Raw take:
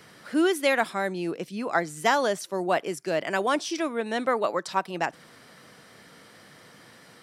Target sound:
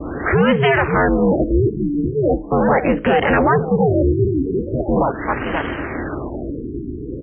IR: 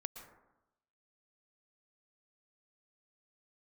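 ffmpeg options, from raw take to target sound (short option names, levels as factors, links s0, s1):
-filter_complex "[0:a]bass=f=250:g=8,treble=f=4000:g=3,asplit=2[s0][s1];[s1]aecho=0:1:528:0.0944[s2];[s0][s2]amix=inputs=2:normalize=0,acompressor=threshold=0.0316:ratio=6,adynamicequalizer=threshold=0.00316:dfrequency=1500:dqfactor=0.79:tfrequency=1500:tqfactor=0.79:attack=5:release=100:ratio=0.375:range=2.5:mode=boostabove:tftype=bell,apsyclip=44.7,bandreject=f=60:t=h:w=6,bandreject=f=120:t=h:w=6,bandreject=f=180:t=h:w=6,bandreject=f=240:t=h:w=6,bandreject=f=300:t=h:w=6,bandreject=f=360:t=h:w=6,bandreject=f=420:t=h:w=6,bandreject=f=480:t=h:w=6,aeval=exprs='val(0)*sin(2*PI*140*n/s)':c=same,acrossover=split=610[s3][s4];[s3]acontrast=59[s5];[s5][s4]amix=inputs=2:normalize=0,acrusher=bits=7:dc=4:mix=0:aa=0.000001,highpass=44,afftfilt=real='re*lt(b*sr/1024,420*pow(3300/420,0.5+0.5*sin(2*PI*0.4*pts/sr)))':imag='im*lt(b*sr/1024,420*pow(3300/420,0.5+0.5*sin(2*PI*0.4*pts/sr)))':win_size=1024:overlap=0.75,volume=0.376"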